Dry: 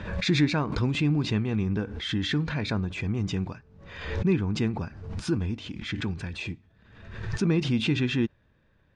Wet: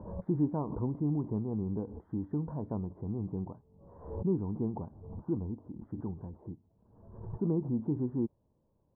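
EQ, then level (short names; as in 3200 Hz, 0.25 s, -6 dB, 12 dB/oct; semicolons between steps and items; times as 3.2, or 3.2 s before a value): elliptic low-pass 970 Hz, stop band 60 dB; air absorption 220 m; low shelf 120 Hz -7 dB; -4.0 dB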